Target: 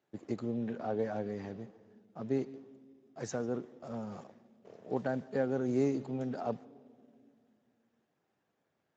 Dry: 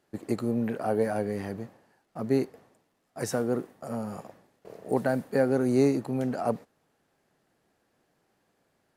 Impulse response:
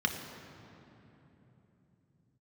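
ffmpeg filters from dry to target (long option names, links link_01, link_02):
-filter_complex "[0:a]asettb=1/sr,asplit=3[link_01][link_02][link_03];[link_01]atrim=end=3.844[link_04];[link_02]atrim=start=3.84:end=4.24,asetpts=PTS-STARTPTS,afade=type=in:duration=0.004:curve=qsin,afade=type=out:start_time=0.396:duration=0.004:curve=qsin,aeval=exprs='val(0)+0.5*0.00447*sgn(val(0))':channel_layout=same[link_05];[link_03]atrim=start=4.236[link_06];[link_04][link_05]acrossfade=duration=0.004:curve1=hsin:curve2=qsin[link_07];[link_07][link_06]acrossfade=duration=0.004:curve1=qsin:curve2=hsin,asplit=2[link_08][link_09];[1:a]atrim=start_sample=2205,asetrate=74970,aresample=44100,adelay=146[link_10];[link_09][link_10]afir=irnorm=-1:irlink=0,volume=-24dB[link_11];[link_08][link_11]amix=inputs=2:normalize=0,volume=-8dB" -ar 16000 -c:a libspeex -b:a 17k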